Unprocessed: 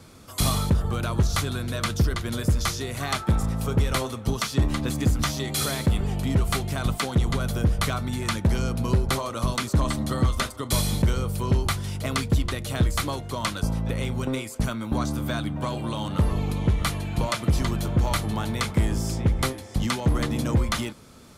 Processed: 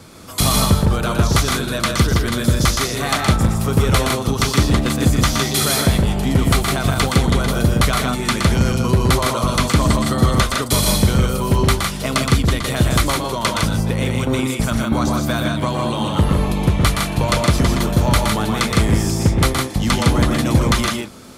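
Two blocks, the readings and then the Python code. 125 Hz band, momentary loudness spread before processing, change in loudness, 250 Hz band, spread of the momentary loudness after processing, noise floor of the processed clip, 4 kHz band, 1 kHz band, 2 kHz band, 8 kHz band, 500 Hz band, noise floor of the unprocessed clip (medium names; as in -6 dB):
+7.0 dB, 4 LU, +8.5 dB, +9.0 dB, 4 LU, -25 dBFS, +10.0 dB, +10.0 dB, +10.0 dB, +10.0 dB, +9.5 dB, -39 dBFS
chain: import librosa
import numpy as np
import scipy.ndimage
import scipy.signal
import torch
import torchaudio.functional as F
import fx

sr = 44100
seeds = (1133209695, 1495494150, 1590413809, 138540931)

p1 = fx.low_shelf(x, sr, hz=72.0, db=-6.5)
p2 = p1 + fx.echo_multitap(p1, sr, ms=(119, 158), db=(-5.0, -3.5), dry=0)
y = F.gain(torch.from_numpy(p2), 7.5).numpy()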